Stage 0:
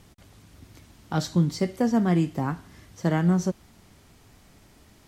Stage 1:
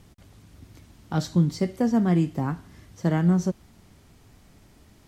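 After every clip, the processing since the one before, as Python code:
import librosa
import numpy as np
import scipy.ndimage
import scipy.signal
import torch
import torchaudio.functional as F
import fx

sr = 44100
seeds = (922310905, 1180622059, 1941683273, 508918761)

y = fx.low_shelf(x, sr, hz=380.0, db=4.5)
y = y * 10.0 ** (-2.5 / 20.0)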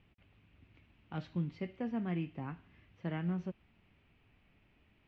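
y = fx.quant_companded(x, sr, bits=8)
y = fx.ladder_lowpass(y, sr, hz=2900.0, resonance_pct=65)
y = y * 10.0 ** (-4.0 / 20.0)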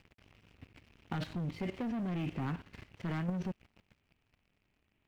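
y = fx.rider(x, sr, range_db=10, speed_s=2.0)
y = fx.leveller(y, sr, passes=3)
y = fx.level_steps(y, sr, step_db=14)
y = y * 10.0 ** (7.0 / 20.0)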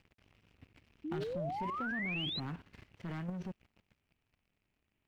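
y = fx.spec_paint(x, sr, seeds[0], shape='rise', start_s=1.04, length_s=1.36, low_hz=290.0, high_hz=4200.0, level_db=-34.0)
y = y * 10.0 ** (-5.0 / 20.0)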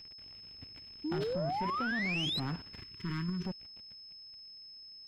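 y = 10.0 ** (-32.5 / 20.0) * np.tanh(x / 10.0 ** (-32.5 / 20.0))
y = fx.spec_box(y, sr, start_s=2.82, length_s=0.63, low_hz=450.0, high_hz=940.0, gain_db=-25)
y = y + 10.0 ** (-54.0 / 20.0) * np.sin(2.0 * np.pi * 5200.0 * np.arange(len(y)) / sr)
y = y * 10.0 ** (5.5 / 20.0)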